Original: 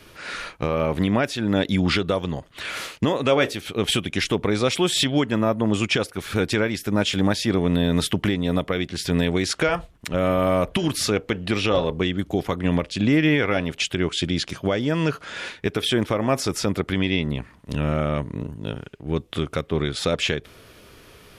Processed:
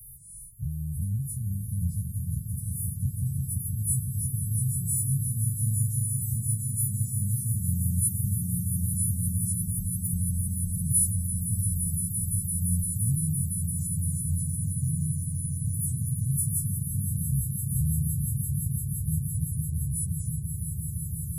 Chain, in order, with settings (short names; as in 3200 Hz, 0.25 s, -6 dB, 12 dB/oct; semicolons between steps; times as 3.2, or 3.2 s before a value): frequency quantiser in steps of 2 st; in parallel at -0.5 dB: compressor, threshold -29 dBFS, peak gain reduction 16.5 dB; on the sum: Chebyshev band-stop 140–9900 Hz, order 4; bell 2300 Hz -8.5 dB 3 oct; swelling echo 0.171 s, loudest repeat 8, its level -9.5 dB